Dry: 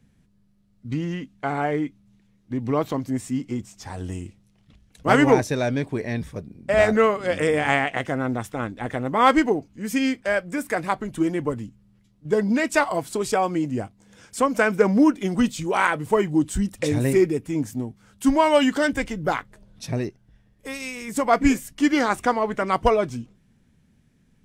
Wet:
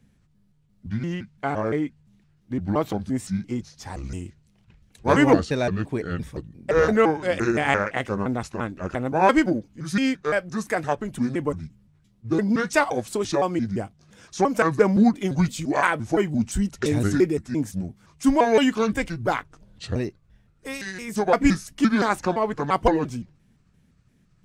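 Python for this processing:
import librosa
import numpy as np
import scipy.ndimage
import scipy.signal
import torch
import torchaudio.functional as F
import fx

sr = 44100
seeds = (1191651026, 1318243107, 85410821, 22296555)

y = fx.pitch_trill(x, sr, semitones=-5.0, every_ms=172)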